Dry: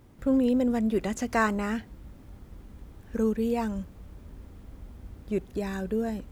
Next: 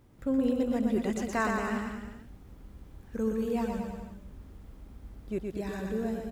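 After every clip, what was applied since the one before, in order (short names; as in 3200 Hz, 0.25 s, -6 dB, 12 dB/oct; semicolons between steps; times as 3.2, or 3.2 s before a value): bouncing-ball echo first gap 0.12 s, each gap 0.9×, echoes 5; gain -5 dB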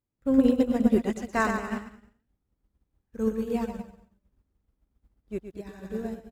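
upward expander 2.5:1, over -49 dBFS; gain +9 dB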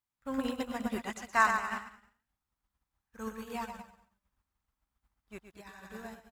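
resonant low shelf 660 Hz -12.5 dB, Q 1.5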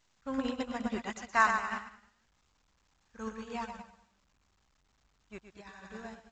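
A-law 128 kbps 16000 Hz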